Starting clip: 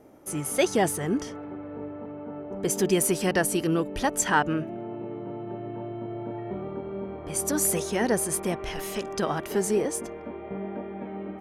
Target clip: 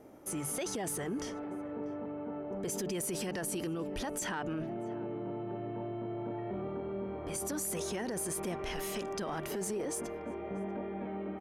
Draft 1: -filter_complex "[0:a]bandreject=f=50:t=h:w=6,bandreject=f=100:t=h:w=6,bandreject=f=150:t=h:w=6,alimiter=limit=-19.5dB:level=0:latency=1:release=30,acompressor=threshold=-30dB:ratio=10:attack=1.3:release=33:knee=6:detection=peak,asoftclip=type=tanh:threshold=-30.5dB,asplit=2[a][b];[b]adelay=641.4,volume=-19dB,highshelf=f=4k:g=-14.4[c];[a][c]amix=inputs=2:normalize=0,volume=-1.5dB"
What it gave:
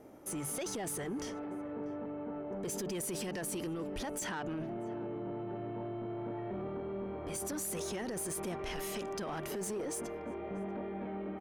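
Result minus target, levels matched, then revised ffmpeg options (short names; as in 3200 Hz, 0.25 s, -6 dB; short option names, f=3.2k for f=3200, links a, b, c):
soft clip: distortion +16 dB
-filter_complex "[0:a]bandreject=f=50:t=h:w=6,bandreject=f=100:t=h:w=6,bandreject=f=150:t=h:w=6,alimiter=limit=-19.5dB:level=0:latency=1:release=30,acompressor=threshold=-30dB:ratio=10:attack=1.3:release=33:knee=6:detection=peak,asoftclip=type=tanh:threshold=-21dB,asplit=2[a][b];[b]adelay=641.4,volume=-19dB,highshelf=f=4k:g=-14.4[c];[a][c]amix=inputs=2:normalize=0,volume=-1.5dB"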